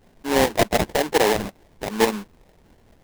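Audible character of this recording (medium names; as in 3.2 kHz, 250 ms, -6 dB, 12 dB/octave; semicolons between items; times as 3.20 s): tremolo saw up 4.4 Hz, depth 50%; a quantiser's noise floor 10-bit, dither none; phasing stages 8, 1.1 Hz, lowest notch 410–1400 Hz; aliases and images of a low sample rate 1.3 kHz, jitter 20%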